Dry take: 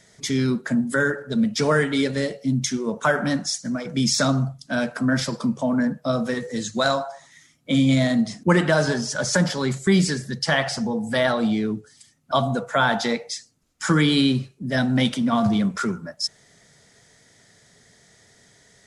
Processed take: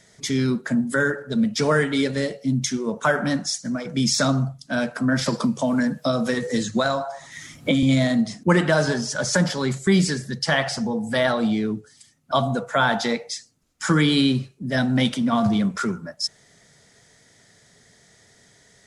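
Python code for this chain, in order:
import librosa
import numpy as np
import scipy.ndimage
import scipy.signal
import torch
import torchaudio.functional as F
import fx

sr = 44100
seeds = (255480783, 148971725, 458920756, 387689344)

y = fx.band_squash(x, sr, depth_pct=100, at=(5.26, 7.83))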